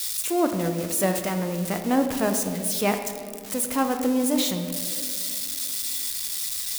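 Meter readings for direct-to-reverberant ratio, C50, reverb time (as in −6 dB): 5.5 dB, 7.5 dB, 2.3 s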